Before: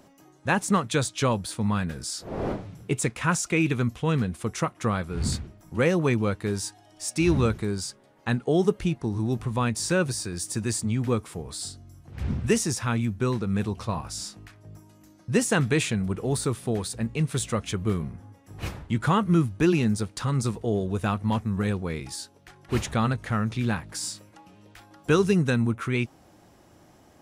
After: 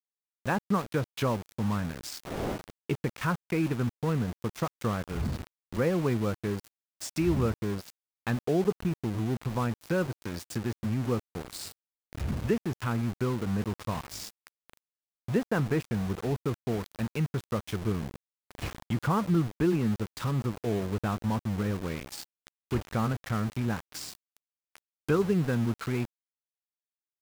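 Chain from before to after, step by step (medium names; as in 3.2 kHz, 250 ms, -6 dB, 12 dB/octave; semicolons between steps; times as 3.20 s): low-pass that closes with the level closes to 1.5 kHz, closed at -22 dBFS; in parallel at +2 dB: compression 6:1, threshold -38 dBFS, peak gain reduction 20.5 dB; on the sum: small samples zeroed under -29.5 dBFS; trim -5.5 dB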